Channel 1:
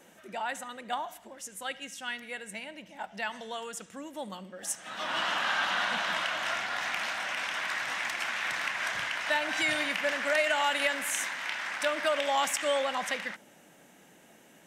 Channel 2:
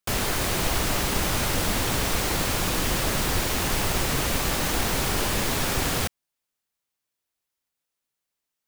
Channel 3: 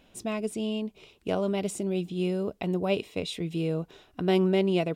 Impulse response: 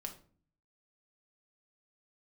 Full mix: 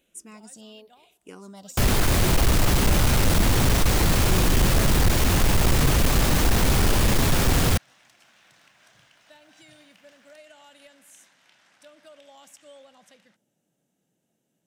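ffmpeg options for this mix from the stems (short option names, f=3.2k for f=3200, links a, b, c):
-filter_complex "[0:a]equalizer=f=125:t=o:w=1:g=9,equalizer=f=1k:t=o:w=1:g=-7,equalizer=f=2k:t=o:w=1:g=-10,volume=-18dB[a];[1:a]lowshelf=f=230:g=10,asoftclip=type=tanh:threshold=-15dB,adelay=1700,volume=3dB[b];[2:a]bass=f=250:g=-6,treble=f=4k:g=13,asplit=2[c][d];[d]afreqshift=-0.93[e];[c][e]amix=inputs=2:normalize=1,volume=-9.5dB[f];[a][b][f]amix=inputs=3:normalize=0"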